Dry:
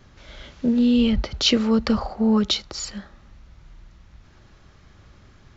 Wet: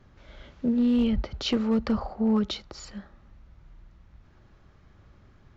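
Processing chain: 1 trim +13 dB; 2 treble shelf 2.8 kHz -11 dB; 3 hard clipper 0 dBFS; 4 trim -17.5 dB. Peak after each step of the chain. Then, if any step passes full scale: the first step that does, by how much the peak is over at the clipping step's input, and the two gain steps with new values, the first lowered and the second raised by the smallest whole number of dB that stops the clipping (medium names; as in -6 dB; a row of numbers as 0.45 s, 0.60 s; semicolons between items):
+8.0 dBFS, +5.0 dBFS, 0.0 dBFS, -17.5 dBFS; step 1, 5.0 dB; step 1 +8 dB, step 4 -12.5 dB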